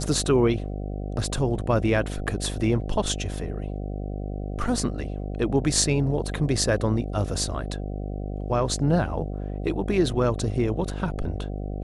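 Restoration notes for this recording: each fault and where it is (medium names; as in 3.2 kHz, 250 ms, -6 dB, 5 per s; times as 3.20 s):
buzz 50 Hz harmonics 15 -31 dBFS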